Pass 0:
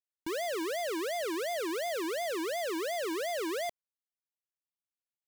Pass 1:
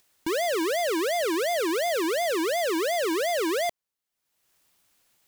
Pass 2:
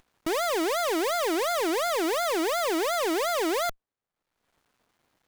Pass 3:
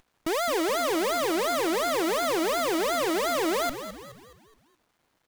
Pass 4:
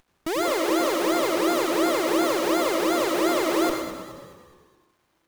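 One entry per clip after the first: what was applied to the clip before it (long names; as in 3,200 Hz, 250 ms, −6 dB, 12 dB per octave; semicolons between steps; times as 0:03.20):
upward compression, threshold −57 dBFS; level +8 dB
windowed peak hold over 17 samples
echo with shifted repeats 211 ms, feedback 45%, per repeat −65 Hz, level −11 dB
convolution reverb RT60 0.95 s, pre-delay 90 ms, DRR 2 dB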